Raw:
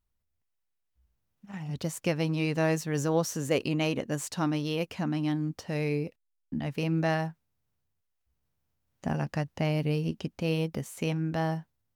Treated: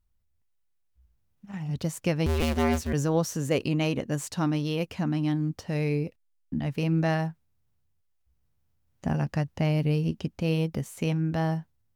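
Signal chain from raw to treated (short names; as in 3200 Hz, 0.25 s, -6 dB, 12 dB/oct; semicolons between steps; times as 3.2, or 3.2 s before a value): 2.26–2.93 cycle switcher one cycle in 2, inverted; low shelf 150 Hz +8.5 dB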